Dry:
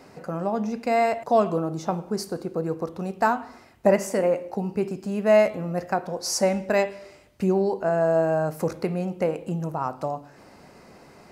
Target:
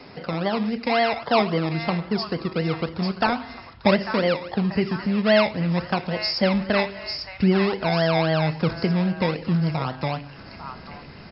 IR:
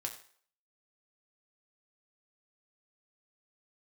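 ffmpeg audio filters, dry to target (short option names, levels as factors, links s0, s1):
-filter_complex "[0:a]asubboost=boost=2.5:cutoff=220,asplit=2[s0][s1];[s1]acompressor=threshold=0.0282:ratio=6,volume=1[s2];[s0][s2]amix=inputs=2:normalize=0,crystalizer=i=1.5:c=0,acrossover=split=260|970[s3][s4][s5];[s4]acrusher=samples=24:mix=1:aa=0.000001:lfo=1:lforange=14.4:lforate=3.7[s6];[s5]aecho=1:1:845|1690|2535|3380|4225|5070:0.562|0.281|0.141|0.0703|0.0351|0.0176[s7];[s3][s6][s7]amix=inputs=3:normalize=0" -ar 12000 -c:a libmp3lame -b:a 40k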